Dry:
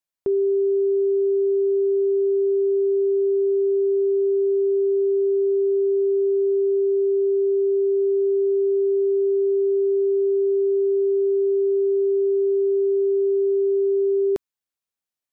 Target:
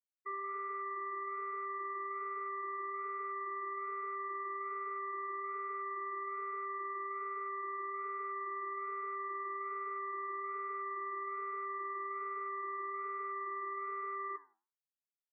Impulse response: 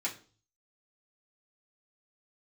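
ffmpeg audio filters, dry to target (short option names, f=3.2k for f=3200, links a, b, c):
-filter_complex "[0:a]aeval=exprs='0.0501*(abs(mod(val(0)/0.0501+3,4)-2)-1)':c=same,equalizer=f=330:w=1.1:g=-8.5,asplit=2[a][b];[b]adelay=15,volume=-11dB[c];[a][c]amix=inputs=2:normalize=0,asoftclip=type=tanh:threshold=-29dB,alimiter=level_in=16.5dB:limit=-24dB:level=0:latency=1,volume=-16.5dB,afftfilt=real='re*gte(hypot(re,im),0.0126)':imag='im*gte(hypot(re,im),0.0126)':win_size=1024:overlap=0.75,aecho=1:1:85|170:0.1|0.016,flanger=delay=4.1:depth=6.9:regen=-84:speed=1.2:shape=triangular,volume=9dB"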